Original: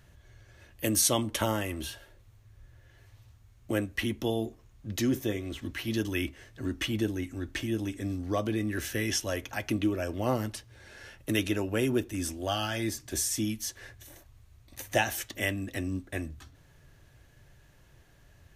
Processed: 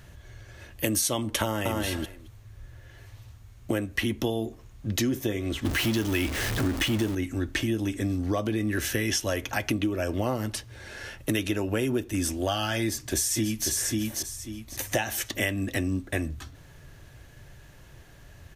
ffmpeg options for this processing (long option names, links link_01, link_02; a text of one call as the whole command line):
ffmpeg -i in.wav -filter_complex "[0:a]asplit=2[link_01][link_02];[link_02]afade=type=in:start_time=1.43:duration=0.01,afade=type=out:start_time=1.83:duration=0.01,aecho=0:1:220|440:0.707946|0.0707946[link_03];[link_01][link_03]amix=inputs=2:normalize=0,asettb=1/sr,asplit=3[link_04][link_05][link_06];[link_04]atrim=end=5.654[link_07];[link_05]atrim=start=5.65:end=7.15,asetpts=PTS-STARTPTS,afade=type=in:duration=0.004:curve=qsin,afade=type=out:start_time=1.496:duration=0.004:curve=qsin,aeval=exprs='val(0)+0.5*0.0251*sgn(val(0))':channel_layout=same[link_08];[link_06]atrim=start=7.146[link_09];[link_07][link_08]acrossfade=duration=0.004:curve1=hsin:curve2=qsin[link_10];[link_10][link_09]acrossfade=duration=0.004:curve1=qsin:curve2=hsin,asplit=2[link_11][link_12];[link_12]afade=type=in:start_time=12.82:duration=0.01,afade=type=out:start_time=13.68:duration=0.01,aecho=0:1:540|1080|1620:0.595662|0.148916|0.0372289[link_13];[link_11][link_13]amix=inputs=2:normalize=0,acompressor=threshold=-32dB:ratio=6,volume=8.5dB" out.wav